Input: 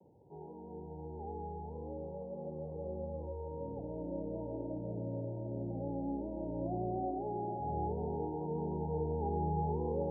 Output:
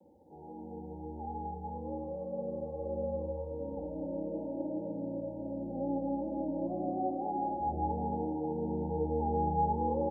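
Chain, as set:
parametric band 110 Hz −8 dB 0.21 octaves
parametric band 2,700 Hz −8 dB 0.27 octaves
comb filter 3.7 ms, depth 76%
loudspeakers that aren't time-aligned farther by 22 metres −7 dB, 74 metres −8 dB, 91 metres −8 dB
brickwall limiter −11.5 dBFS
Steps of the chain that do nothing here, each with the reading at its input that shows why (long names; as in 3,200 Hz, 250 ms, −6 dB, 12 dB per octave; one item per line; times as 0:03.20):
parametric band 2,700 Hz: nothing at its input above 960 Hz
brickwall limiter −11.5 dBFS: peak of its input −20.0 dBFS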